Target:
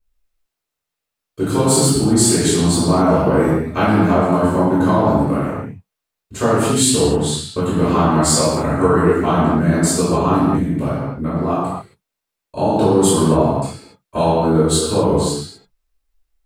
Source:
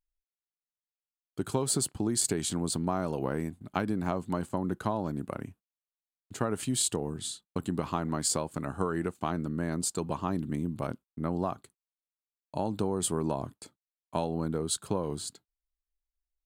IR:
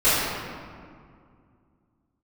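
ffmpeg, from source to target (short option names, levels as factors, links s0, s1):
-filter_complex "[0:a]asettb=1/sr,asplit=3[s0][s1][s2];[s0]atrim=end=10.444[s3];[s1]atrim=start=10.44:end=11.48,asetpts=PTS-STARTPTS,afade=t=in:d=0.004:c=qsin,afade=t=out:st=1.036:d=0.004:c=qsin,acompressor=threshold=0.0251:ratio=4[s4];[s2]atrim=start=11.476[s5];[s3][s4]acrossfade=d=0.004:c1=hsin:c2=qsin[s6];[s6][s5]acrossfade=d=0.004:c1=qsin:c2=hsin[s7];[1:a]atrim=start_sample=2205,afade=t=out:st=0.34:d=0.01,atrim=end_sample=15435[s8];[s7][s8]afir=irnorm=-1:irlink=0,volume=0.708"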